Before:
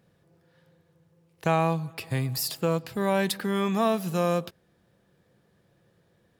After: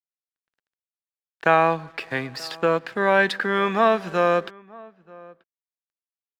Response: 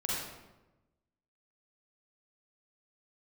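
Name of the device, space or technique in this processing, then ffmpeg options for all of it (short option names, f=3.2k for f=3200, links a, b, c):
pocket radio on a weak battery: -filter_complex "[0:a]highpass=280,lowpass=3.5k,lowshelf=f=98:g=-5.5,aeval=exprs='sgn(val(0))*max(abs(val(0))-0.00133,0)':c=same,equalizer=f=1.6k:t=o:w=0.54:g=9,asplit=2[a][b];[b]adelay=932.9,volume=-23dB,highshelf=f=4k:g=-21[c];[a][c]amix=inputs=2:normalize=0,volume=6.5dB"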